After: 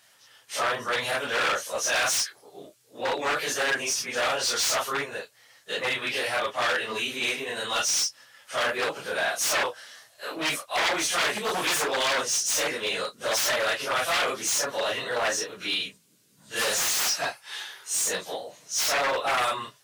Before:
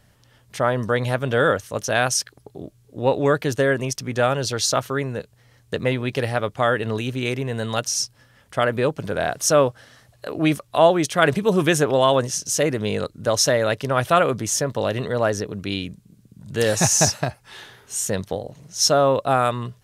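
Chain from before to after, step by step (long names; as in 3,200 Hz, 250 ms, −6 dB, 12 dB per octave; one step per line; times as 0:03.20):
random phases in long frames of 100 ms
high-shelf EQ 3,600 Hz +8.5 dB
wave folding −15.5 dBFS
high-pass filter 640 Hz 6 dB per octave
mid-hump overdrive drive 12 dB, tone 5,800 Hz, clips at −12 dBFS
level −4.5 dB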